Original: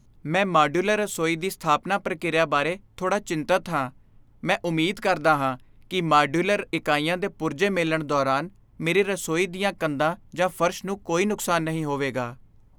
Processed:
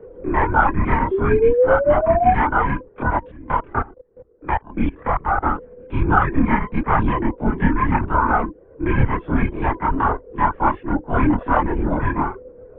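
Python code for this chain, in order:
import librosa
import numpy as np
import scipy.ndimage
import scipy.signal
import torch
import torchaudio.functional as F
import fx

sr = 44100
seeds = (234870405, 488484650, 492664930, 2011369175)

y = fx.band_invert(x, sr, width_hz=500)
y = scipy.signal.sosfilt(scipy.signal.butter(4, 1700.0, 'lowpass', fs=sr, output='sos'), y)
y = fx.lpc_vocoder(y, sr, seeds[0], excitation='whisper', order=16)
y = fx.spec_paint(y, sr, seeds[1], shape='rise', start_s=1.11, length_s=1.21, low_hz=380.0, high_hz=760.0, level_db=-20.0)
y = fx.level_steps(y, sr, step_db=24, at=(3.03, 5.42), fade=0.02)
y = fx.chorus_voices(y, sr, voices=4, hz=0.55, base_ms=28, depth_ms=2.4, mix_pct=60)
y = fx.band_squash(y, sr, depth_pct=40)
y = F.gain(torch.from_numpy(y), 7.5).numpy()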